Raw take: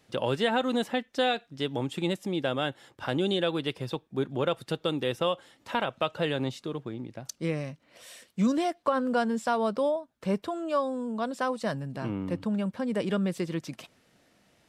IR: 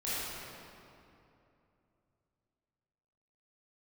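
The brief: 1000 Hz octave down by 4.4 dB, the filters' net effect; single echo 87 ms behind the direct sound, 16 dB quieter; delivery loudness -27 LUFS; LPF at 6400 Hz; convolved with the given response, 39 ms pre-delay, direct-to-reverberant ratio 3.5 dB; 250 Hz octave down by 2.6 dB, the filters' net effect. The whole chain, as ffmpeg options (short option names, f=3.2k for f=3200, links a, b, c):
-filter_complex "[0:a]lowpass=6.4k,equalizer=f=250:t=o:g=-3,equalizer=f=1k:t=o:g=-6,aecho=1:1:87:0.158,asplit=2[a][b];[1:a]atrim=start_sample=2205,adelay=39[c];[b][c]afir=irnorm=-1:irlink=0,volume=-10dB[d];[a][d]amix=inputs=2:normalize=0,volume=3.5dB"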